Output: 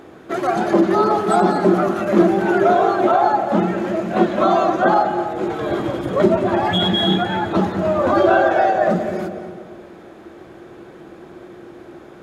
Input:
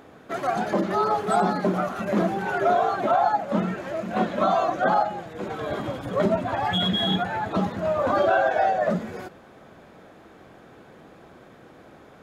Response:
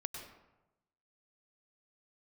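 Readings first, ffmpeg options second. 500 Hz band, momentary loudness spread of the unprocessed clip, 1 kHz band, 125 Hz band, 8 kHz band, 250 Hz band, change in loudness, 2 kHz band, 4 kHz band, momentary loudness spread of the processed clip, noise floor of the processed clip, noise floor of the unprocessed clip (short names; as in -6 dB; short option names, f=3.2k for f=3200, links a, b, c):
+7.5 dB, 9 LU, +5.5 dB, +6.0 dB, n/a, +9.5 dB, +6.5 dB, +5.0 dB, +5.0 dB, 8 LU, -41 dBFS, -50 dBFS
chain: -filter_complex "[0:a]equalizer=f=350:t=o:w=0.23:g=13,asplit=2[a][b];[1:a]atrim=start_sample=2205,asetrate=24255,aresample=44100[c];[b][c]afir=irnorm=-1:irlink=0,volume=-3dB[d];[a][d]amix=inputs=2:normalize=0"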